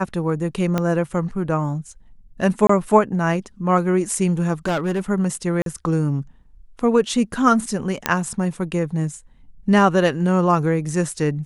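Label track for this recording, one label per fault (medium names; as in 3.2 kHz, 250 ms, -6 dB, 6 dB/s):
0.780000	0.780000	pop -8 dBFS
2.670000	2.690000	dropout 24 ms
4.660000	5.000000	clipped -17.5 dBFS
5.620000	5.660000	dropout 42 ms
8.060000	8.060000	pop -2 dBFS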